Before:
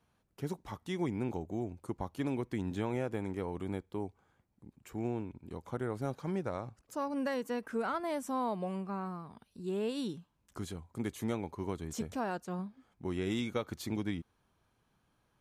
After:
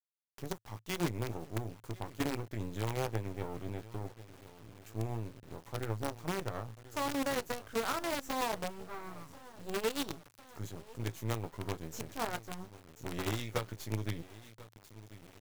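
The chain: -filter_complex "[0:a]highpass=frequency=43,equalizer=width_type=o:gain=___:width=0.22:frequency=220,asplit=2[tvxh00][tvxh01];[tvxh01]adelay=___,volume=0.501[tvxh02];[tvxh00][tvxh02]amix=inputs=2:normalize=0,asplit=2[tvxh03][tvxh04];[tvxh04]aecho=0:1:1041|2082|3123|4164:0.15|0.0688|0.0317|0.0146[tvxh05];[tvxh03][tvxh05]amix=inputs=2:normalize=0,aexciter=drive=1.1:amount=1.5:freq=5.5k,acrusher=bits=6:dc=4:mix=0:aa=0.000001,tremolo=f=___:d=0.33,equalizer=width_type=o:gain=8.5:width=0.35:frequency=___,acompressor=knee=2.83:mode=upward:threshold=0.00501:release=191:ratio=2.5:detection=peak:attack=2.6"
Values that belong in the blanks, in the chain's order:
-10, 18, 7.6, 110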